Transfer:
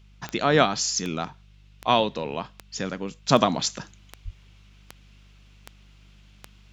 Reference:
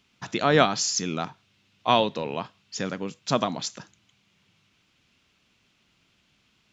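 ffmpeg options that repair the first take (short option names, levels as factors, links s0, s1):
-filter_complex "[0:a]adeclick=t=4,bandreject=f=49.9:t=h:w=4,bandreject=f=99.8:t=h:w=4,bandreject=f=149.7:t=h:w=4,bandreject=f=199.6:t=h:w=4,asplit=3[s0][s1][s2];[s0]afade=t=out:st=4.24:d=0.02[s3];[s1]highpass=f=140:w=0.5412,highpass=f=140:w=1.3066,afade=t=in:st=4.24:d=0.02,afade=t=out:st=4.36:d=0.02[s4];[s2]afade=t=in:st=4.36:d=0.02[s5];[s3][s4][s5]amix=inputs=3:normalize=0,asetnsamples=n=441:p=0,asendcmd='3.29 volume volume -5.5dB',volume=1"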